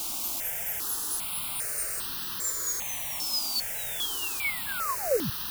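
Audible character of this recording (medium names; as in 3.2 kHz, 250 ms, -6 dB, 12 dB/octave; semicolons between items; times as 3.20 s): chopped level 4.5 Hz, depth 60%, duty 25%; a quantiser's noise floor 6-bit, dither triangular; notches that jump at a steady rate 2.5 Hz 480–2200 Hz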